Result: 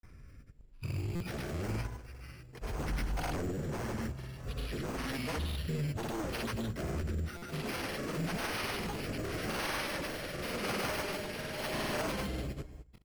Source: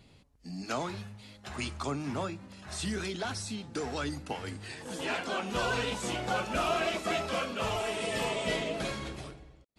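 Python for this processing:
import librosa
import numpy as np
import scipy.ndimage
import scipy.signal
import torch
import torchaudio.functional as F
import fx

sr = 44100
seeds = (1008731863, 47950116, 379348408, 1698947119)

p1 = fx.speed_glide(x, sr, from_pct=51, to_pct=99)
p2 = fx.low_shelf(p1, sr, hz=180.0, db=7.0)
p3 = fx.hum_notches(p2, sr, base_hz=60, count=3)
p4 = fx.level_steps(p3, sr, step_db=21)
p5 = p3 + (p4 * librosa.db_to_amplitude(0.0))
p6 = 10.0 ** (-30.0 / 20.0) * (np.abs((p5 / 10.0 ** (-30.0 / 20.0) + 3.0) % 4.0 - 2.0) - 1.0)
p7 = fx.rotary(p6, sr, hz=0.9)
p8 = np.repeat(scipy.signal.resample_poly(p7, 1, 6), 6)[:len(p7)]
p9 = fx.granulator(p8, sr, seeds[0], grain_ms=100.0, per_s=20.0, spray_ms=100.0, spread_st=0)
p10 = p9 + 10.0 ** (-21.0 / 20.0) * np.pad(p9, (int(203 * sr / 1000.0), 0))[:len(p9)]
p11 = fx.buffer_glitch(p10, sr, at_s=(1.15, 7.37), block=256, repeats=8)
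y = p11 * librosa.db_to_amplitude(2.5)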